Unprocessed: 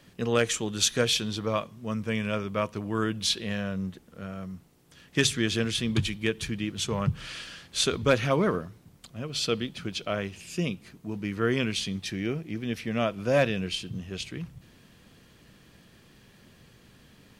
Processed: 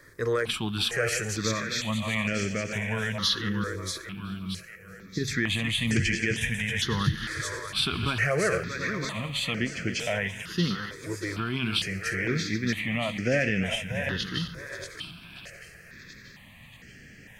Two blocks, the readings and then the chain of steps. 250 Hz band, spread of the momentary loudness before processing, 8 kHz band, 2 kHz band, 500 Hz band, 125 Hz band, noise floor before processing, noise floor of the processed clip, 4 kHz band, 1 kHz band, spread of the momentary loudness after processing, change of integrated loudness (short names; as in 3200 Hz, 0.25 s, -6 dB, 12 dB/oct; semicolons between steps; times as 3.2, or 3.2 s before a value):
-0.5 dB, 14 LU, -2.0 dB, +5.5 dB, -2.5 dB, +1.5 dB, -57 dBFS, -50 dBFS, +1.0 dB, -1.0 dB, 13 LU, +0.5 dB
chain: regenerating reverse delay 0.362 s, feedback 50%, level -12 dB; bell 1900 Hz +10 dB 0.55 oct; limiter -17.5 dBFS, peak gain reduction 11.5 dB; spectral gain 3.49–5.28, 530–10000 Hz -16 dB; on a send: thinning echo 0.633 s, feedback 53%, high-pass 1100 Hz, level -5 dB; on the sum: step phaser 2.2 Hz 770–3700 Hz; gain +4.5 dB